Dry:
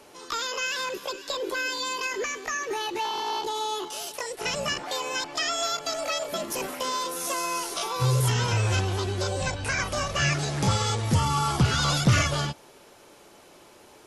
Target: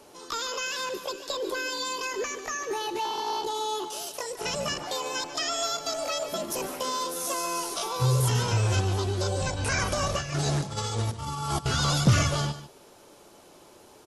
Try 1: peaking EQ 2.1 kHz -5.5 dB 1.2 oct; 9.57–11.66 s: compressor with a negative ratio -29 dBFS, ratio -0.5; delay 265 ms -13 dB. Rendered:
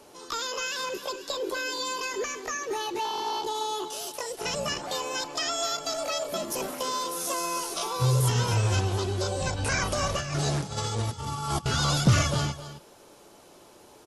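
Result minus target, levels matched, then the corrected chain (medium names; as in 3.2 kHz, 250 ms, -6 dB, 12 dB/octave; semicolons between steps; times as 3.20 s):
echo 119 ms late
peaking EQ 2.1 kHz -5.5 dB 1.2 oct; 9.57–11.66 s: compressor with a negative ratio -29 dBFS, ratio -0.5; delay 146 ms -13 dB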